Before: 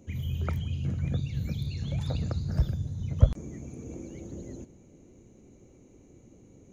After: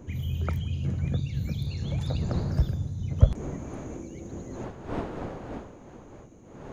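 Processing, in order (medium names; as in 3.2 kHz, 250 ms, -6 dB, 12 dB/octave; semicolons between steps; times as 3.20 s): wind noise 320 Hz -42 dBFS, from 3.58 s 520 Hz; trim +1.5 dB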